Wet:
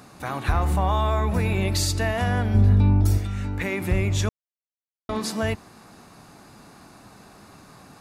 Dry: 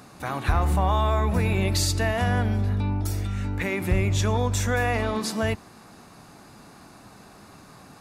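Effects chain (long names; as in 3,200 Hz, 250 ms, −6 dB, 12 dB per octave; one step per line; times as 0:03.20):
0:02.54–0:03.18: low-shelf EQ 400 Hz +9 dB
0:04.29–0:05.09: silence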